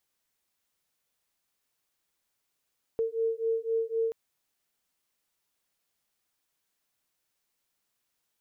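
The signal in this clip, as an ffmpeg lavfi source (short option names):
-f lavfi -i "aevalsrc='0.0335*(sin(2*PI*451*t)+sin(2*PI*454.9*t))':d=1.13:s=44100"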